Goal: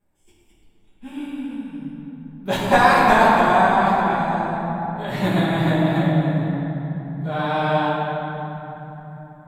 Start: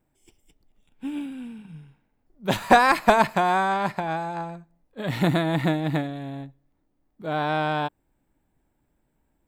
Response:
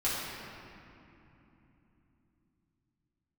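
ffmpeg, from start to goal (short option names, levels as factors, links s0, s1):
-filter_complex "[1:a]atrim=start_sample=2205,asetrate=32634,aresample=44100[s0];[0:a][s0]afir=irnorm=-1:irlink=0,volume=0.473"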